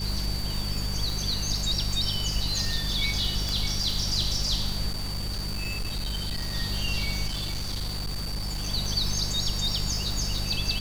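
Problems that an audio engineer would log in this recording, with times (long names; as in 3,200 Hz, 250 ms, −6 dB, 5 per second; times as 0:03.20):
surface crackle 520 per second −32 dBFS
mains hum 50 Hz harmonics 4 −32 dBFS
whistle 4,600 Hz −34 dBFS
0:03.49: click
0:04.90–0:06.56: clipping −26.5 dBFS
0:07.27–0:08.68: clipping −27 dBFS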